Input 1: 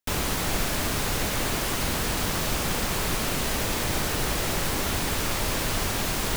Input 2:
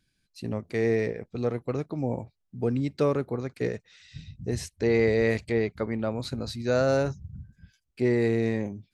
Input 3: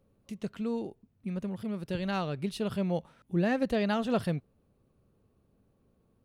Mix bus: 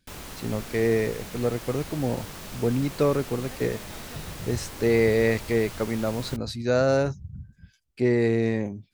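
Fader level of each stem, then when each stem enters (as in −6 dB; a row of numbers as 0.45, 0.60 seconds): −13.0, +2.0, −19.0 decibels; 0.00, 0.00, 0.00 seconds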